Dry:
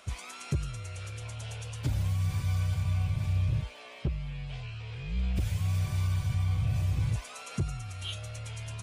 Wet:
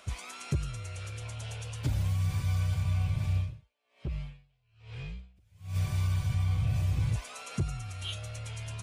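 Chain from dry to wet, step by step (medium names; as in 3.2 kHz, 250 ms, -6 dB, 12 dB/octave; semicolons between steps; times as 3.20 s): 3.34–5.76 s: logarithmic tremolo 1.2 Hz, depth 36 dB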